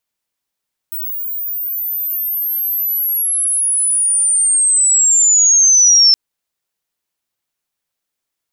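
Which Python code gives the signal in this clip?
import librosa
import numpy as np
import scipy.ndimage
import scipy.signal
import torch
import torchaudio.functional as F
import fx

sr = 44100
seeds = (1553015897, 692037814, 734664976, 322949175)

y = fx.chirp(sr, length_s=5.22, from_hz=16000.0, to_hz=5300.0, law='linear', from_db=-20.5, to_db=-5.5)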